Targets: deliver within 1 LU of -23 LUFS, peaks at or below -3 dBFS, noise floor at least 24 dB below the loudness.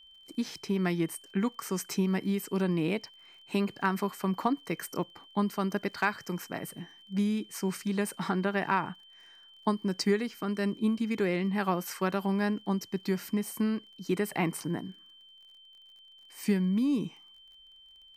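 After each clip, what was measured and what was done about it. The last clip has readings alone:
ticks 38/s; steady tone 3100 Hz; tone level -53 dBFS; loudness -31.5 LUFS; peak -13.0 dBFS; loudness target -23.0 LUFS
-> de-click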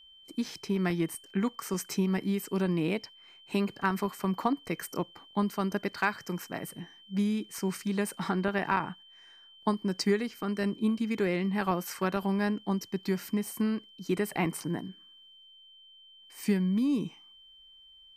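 ticks 0/s; steady tone 3100 Hz; tone level -53 dBFS
-> notch 3100 Hz, Q 30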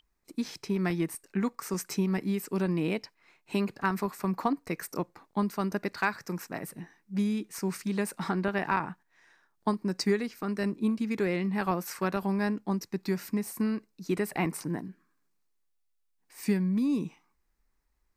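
steady tone none; loudness -31.5 LUFS; peak -13.5 dBFS; loudness target -23.0 LUFS
-> gain +8.5 dB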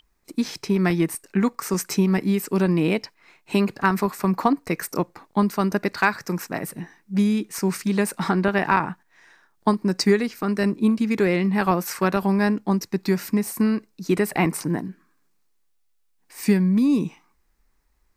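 loudness -23.0 LUFS; peak -5.0 dBFS; noise floor -65 dBFS

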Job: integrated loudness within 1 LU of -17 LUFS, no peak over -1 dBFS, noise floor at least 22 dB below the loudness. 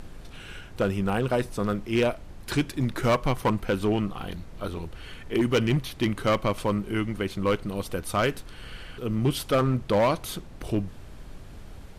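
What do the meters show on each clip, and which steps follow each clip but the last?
clipped 1.4%; flat tops at -17.0 dBFS; noise floor -44 dBFS; noise floor target -49 dBFS; loudness -27.0 LUFS; peak -17.0 dBFS; loudness target -17.0 LUFS
-> clip repair -17 dBFS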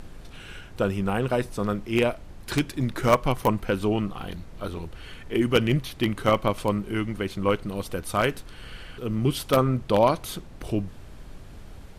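clipped 0.0%; noise floor -44 dBFS; noise floor target -48 dBFS
-> noise print and reduce 6 dB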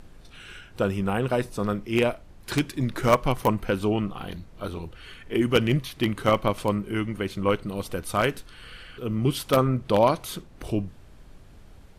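noise floor -49 dBFS; loudness -25.5 LUFS; peak -8.0 dBFS; loudness target -17.0 LUFS
-> gain +8.5 dB; limiter -1 dBFS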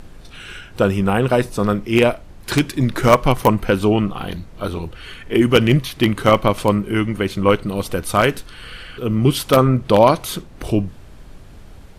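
loudness -17.5 LUFS; peak -1.0 dBFS; noise floor -40 dBFS

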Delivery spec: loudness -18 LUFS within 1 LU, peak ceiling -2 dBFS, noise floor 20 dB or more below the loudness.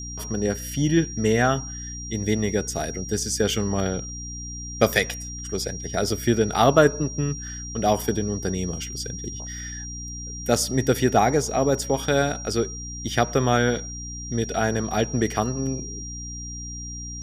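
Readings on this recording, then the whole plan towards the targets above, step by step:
hum 60 Hz; harmonics up to 300 Hz; hum level -34 dBFS; steady tone 5700 Hz; tone level -35 dBFS; loudness -24.5 LUFS; peak -3.5 dBFS; loudness target -18.0 LUFS
-> de-hum 60 Hz, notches 5; notch 5700 Hz, Q 30; gain +6.5 dB; limiter -2 dBFS

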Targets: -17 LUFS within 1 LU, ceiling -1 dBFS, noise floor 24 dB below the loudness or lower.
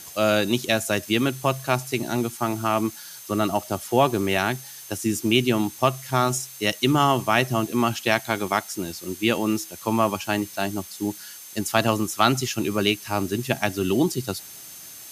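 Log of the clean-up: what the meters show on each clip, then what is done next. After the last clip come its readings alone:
steady tone 6300 Hz; tone level -47 dBFS; noise floor -42 dBFS; noise floor target -48 dBFS; loudness -24.0 LUFS; peak -3.0 dBFS; loudness target -17.0 LUFS
-> notch 6300 Hz, Q 30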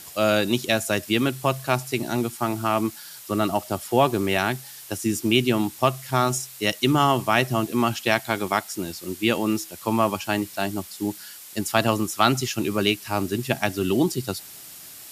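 steady tone none; noise floor -42 dBFS; noise floor target -48 dBFS
-> denoiser 6 dB, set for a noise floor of -42 dBFS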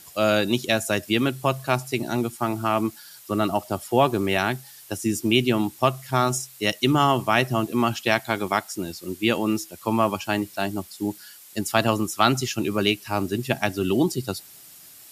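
noise floor -47 dBFS; noise floor target -48 dBFS
-> denoiser 6 dB, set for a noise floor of -47 dBFS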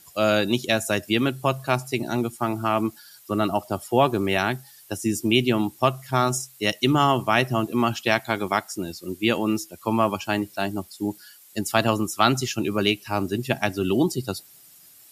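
noise floor -51 dBFS; loudness -24.0 LUFS; peak -3.0 dBFS; loudness target -17.0 LUFS
-> gain +7 dB; limiter -1 dBFS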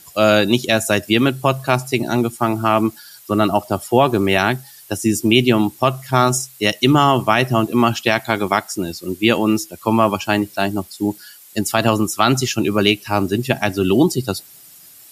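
loudness -17.5 LUFS; peak -1.0 dBFS; noise floor -44 dBFS

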